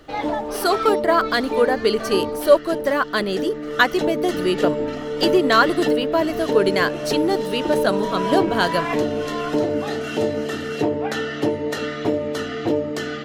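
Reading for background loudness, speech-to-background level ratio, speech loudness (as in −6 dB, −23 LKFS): −24.0 LKFS, 3.0 dB, −21.0 LKFS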